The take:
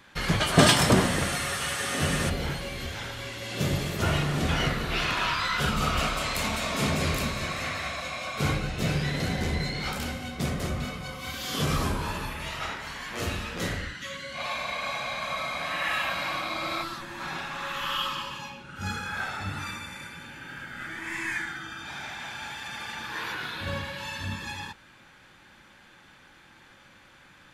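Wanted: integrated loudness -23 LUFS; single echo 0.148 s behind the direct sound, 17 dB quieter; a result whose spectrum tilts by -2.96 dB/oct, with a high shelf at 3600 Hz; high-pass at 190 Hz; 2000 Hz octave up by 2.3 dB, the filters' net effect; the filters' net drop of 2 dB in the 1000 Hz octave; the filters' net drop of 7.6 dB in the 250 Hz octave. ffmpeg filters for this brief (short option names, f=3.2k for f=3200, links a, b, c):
-af "highpass=190,equalizer=f=250:t=o:g=-7.5,equalizer=f=1k:t=o:g=-3.5,equalizer=f=2k:t=o:g=6,highshelf=f=3.6k:g=-7.5,aecho=1:1:148:0.141,volume=7dB"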